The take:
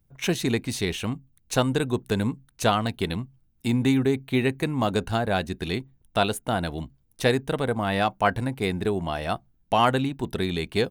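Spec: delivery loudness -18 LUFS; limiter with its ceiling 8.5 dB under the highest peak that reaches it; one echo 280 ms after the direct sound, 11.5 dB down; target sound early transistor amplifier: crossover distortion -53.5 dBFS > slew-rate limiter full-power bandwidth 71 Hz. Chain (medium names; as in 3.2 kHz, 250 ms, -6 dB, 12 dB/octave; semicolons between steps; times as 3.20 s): peak limiter -16 dBFS; delay 280 ms -11.5 dB; crossover distortion -53.5 dBFS; slew-rate limiter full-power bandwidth 71 Hz; trim +11 dB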